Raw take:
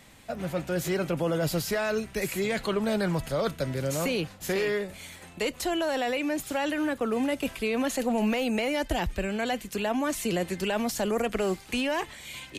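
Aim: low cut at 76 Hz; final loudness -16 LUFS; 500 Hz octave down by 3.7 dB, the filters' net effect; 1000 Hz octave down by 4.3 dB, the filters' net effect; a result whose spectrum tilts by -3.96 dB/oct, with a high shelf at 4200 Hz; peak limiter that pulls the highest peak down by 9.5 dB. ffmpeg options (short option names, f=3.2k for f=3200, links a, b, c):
-af "highpass=76,equalizer=f=500:t=o:g=-3.5,equalizer=f=1k:t=o:g=-5,highshelf=f=4.2k:g=7,volume=18.5dB,alimiter=limit=-8dB:level=0:latency=1"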